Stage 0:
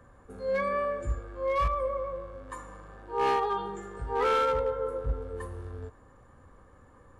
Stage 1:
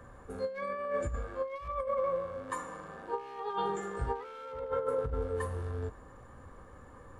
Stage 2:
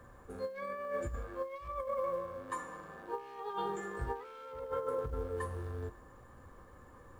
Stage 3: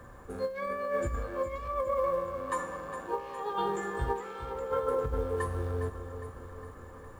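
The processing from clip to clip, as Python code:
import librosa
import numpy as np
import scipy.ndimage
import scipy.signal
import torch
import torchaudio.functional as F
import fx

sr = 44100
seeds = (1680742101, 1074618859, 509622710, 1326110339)

y1 = fx.hum_notches(x, sr, base_hz=50, count=7)
y1 = fx.over_compress(y1, sr, threshold_db=-33.0, ratio=-0.5)
y2 = fx.comb_fb(y1, sr, f0_hz=350.0, decay_s=0.19, harmonics='odd', damping=0.0, mix_pct=60)
y2 = fx.quant_companded(y2, sr, bits=8)
y2 = F.gain(torch.from_numpy(y2), 3.5).numpy()
y3 = fx.echo_feedback(y2, sr, ms=409, feedback_pct=58, wet_db=-11)
y3 = F.gain(torch.from_numpy(y3), 6.0).numpy()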